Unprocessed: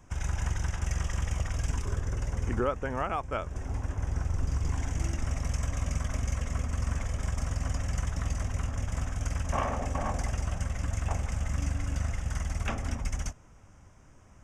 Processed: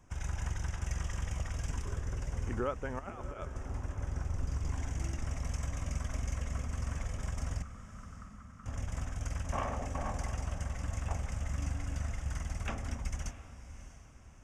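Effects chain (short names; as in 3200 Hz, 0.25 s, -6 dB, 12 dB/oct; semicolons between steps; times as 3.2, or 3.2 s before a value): 2.99–3.46 negative-ratio compressor -36 dBFS, ratio -0.5; 7.62–8.66 double band-pass 510 Hz, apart 2.6 oct; diffused feedback echo 0.644 s, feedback 42%, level -13 dB; gain -5.5 dB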